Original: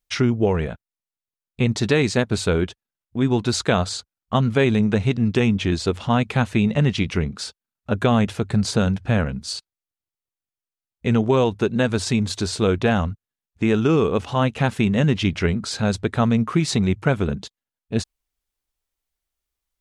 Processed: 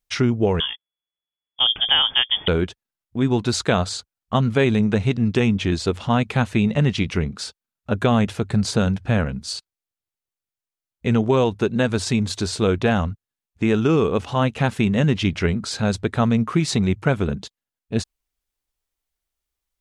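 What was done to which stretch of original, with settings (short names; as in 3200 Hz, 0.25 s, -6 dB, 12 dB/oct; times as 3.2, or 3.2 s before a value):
0.6–2.48 inverted band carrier 3400 Hz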